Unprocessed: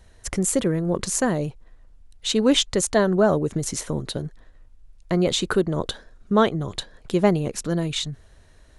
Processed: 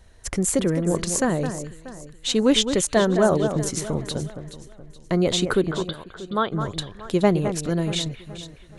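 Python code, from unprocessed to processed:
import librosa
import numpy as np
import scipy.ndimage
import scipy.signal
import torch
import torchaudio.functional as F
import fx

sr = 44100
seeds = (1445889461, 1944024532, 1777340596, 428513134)

y = fx.cheby_ripple(x, sr, hz=4800.0, ripple_db=9, at=(5.71, 6.52))
y = fx.echo_alternate(y, sr, ms=212, hz=2300.0, feedback_pct=60, wet_db=-8.5)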